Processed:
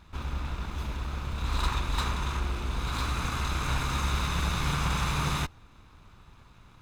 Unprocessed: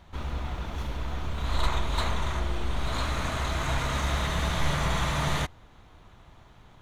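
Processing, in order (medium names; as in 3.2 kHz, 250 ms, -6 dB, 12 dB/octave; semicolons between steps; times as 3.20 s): comb filter that takes the minimum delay 0.79 ms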